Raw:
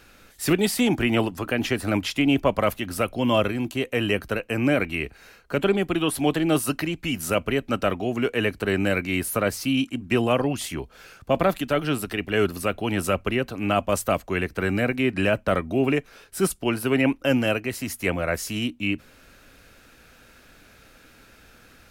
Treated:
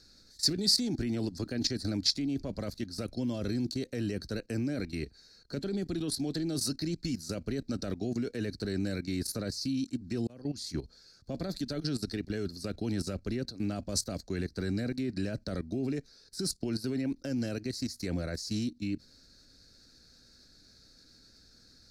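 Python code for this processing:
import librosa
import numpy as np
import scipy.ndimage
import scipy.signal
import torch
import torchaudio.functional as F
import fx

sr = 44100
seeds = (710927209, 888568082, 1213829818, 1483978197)

y = fx.edit(x, sr, fx.fade_in_span(start_s=10.27, length_s=0.44), tone=tone)
y = fx.dynamic_eq(y, sr, hz=1100.0, q=1.3, threshold_db=-38.0, ratio=4.0, max_db=-3)
y = fx.level_steps(y, sr, step_db=15)
y = fx.curve_eq(y, sr, hz=(270.0, 400.0, 650.0, 1100.0, 1600.0, 3000.0, 4300.0, 7600.0, 15000.0), db=(0, -4, -9, -15, -7, -18, 15, 0, -14))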